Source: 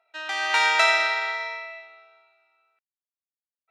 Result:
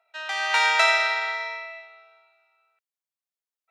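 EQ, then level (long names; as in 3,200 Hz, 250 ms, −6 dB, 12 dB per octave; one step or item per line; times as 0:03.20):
inverse Chebyshev high-pass filter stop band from 210 Hz, stop band 40 dB
0.0 dB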